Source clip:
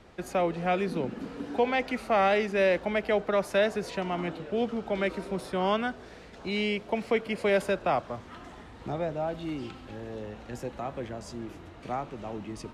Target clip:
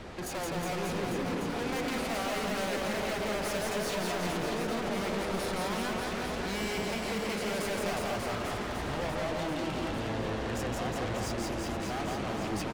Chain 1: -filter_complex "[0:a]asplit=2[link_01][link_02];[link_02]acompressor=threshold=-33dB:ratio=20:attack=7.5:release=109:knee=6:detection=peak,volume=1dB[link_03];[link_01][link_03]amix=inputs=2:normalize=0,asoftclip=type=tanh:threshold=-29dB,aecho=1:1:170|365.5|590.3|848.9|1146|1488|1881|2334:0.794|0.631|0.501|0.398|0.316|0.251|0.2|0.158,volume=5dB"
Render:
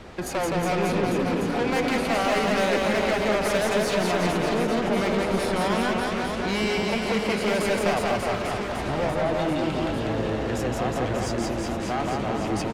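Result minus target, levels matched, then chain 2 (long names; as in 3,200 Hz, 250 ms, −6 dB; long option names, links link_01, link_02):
soft clipping: distortion −5 dB
-filter_complex "[0:a]asplit=2[link_01][link_02];[link_02]acompressor=threshold=-33dB:ratio=20:attack=7.5:release=109:knee=6:detection=peak,volume=1dB[link_03];[link_01][link_03]amix=inputs=2:normalize=0,asoftclip=type=tanh:threshold=-40.5dB,aecho=1:1:170|365.5|590.3|848.9|1146|1488|1881|2334:0.794|0.631|0.501|0.398|0.316|0.251|0.2|0.158,volume=5dB"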